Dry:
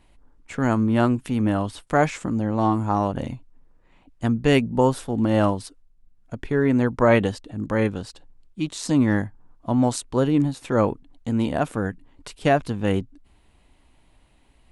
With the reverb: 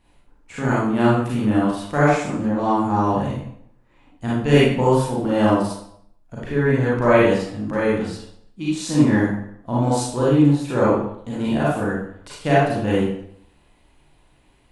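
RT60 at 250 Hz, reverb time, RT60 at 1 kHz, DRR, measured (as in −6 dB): 0.65 s, 0.70 s, 0.70 s, −8.0 dB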